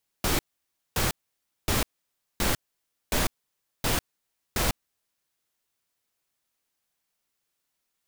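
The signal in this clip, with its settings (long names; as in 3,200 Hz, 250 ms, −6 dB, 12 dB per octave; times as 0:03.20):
noise bursts pink, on 0.15 s, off 0.57 s, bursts 7, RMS −24.5 dBFS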